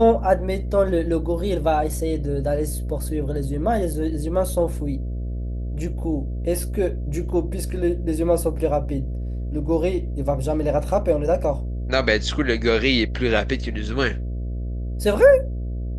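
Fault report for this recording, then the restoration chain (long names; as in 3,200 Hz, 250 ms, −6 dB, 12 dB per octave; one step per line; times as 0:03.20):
mains buzz 60 Hz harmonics 11 −27 dBFS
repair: hum removal 60 Hz, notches 11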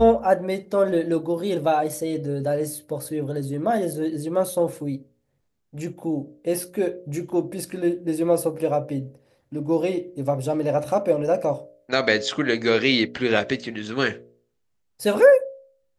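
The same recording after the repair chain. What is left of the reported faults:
none of them is left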